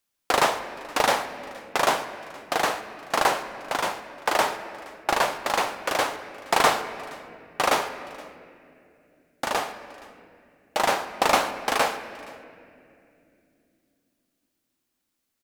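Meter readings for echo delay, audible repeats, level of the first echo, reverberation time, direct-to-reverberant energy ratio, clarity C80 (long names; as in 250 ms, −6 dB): 471 ms, 1, −23.0 dB, 2.6 s, 10.0 dB, 11.5 dB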